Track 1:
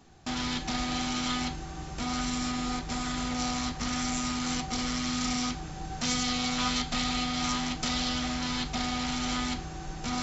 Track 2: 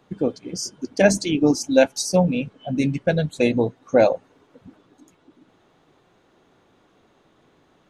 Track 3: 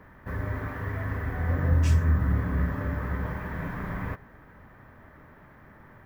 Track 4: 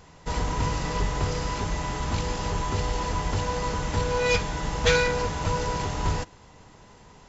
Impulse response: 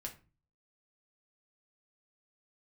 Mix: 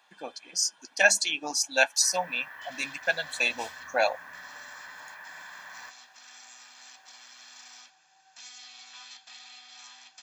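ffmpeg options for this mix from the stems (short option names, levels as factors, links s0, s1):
-filter_complex "[0:a]adelay=2350,volume=0.15[s0];[1:a]volume=1.26[s1];[2:a]adelay=1750,volume=0.596[s2];[s0][s1][s2]amix=inputs=3:normalize=0,highpass=1200,aecho=1:1:1.2:0.56"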